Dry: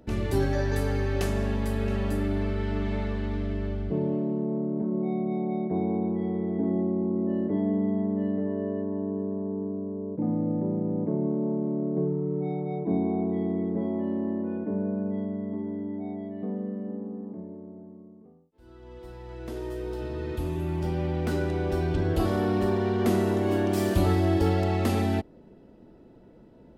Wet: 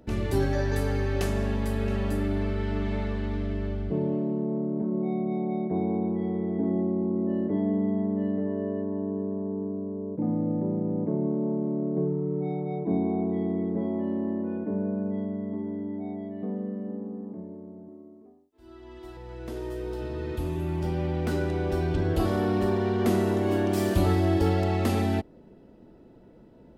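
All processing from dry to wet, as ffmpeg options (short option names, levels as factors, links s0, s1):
-filter_complex "[0:a]asettb=1/sr,asplit=3[s0][s1][s2];[s0]atrim=end=17.884[s3];[s1]atrim=start=17.88:end=19.17,asetpts=PTS-STARTPTS,afade=t=in:d=0.004:c=qsin,afade=t=out:st=1.286:d=0.004:c=qsin,lowshelf=f=86:g=-9.5,aecho=1:1:3:0.82,atrim=end_sample=56889[s4];[s2]atrim=start=19.166[s5];[s3][s4]acrossfade=d=0.004:c1=hsin:c2=qsin[s6];[s6][s5]acrossfade=d=0.004:c1=qsin:c2=hsin"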